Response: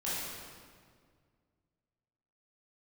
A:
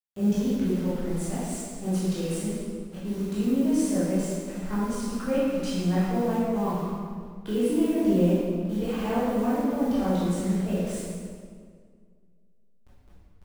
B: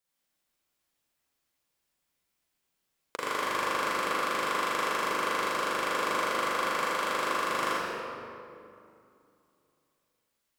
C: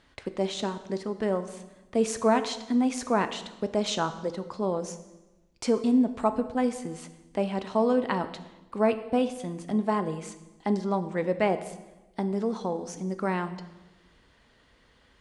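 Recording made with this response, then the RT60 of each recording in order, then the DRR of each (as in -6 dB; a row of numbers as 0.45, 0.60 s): A; 1.9, 2.6, 1.1 s; -10.0, -7.5, 9.5 dB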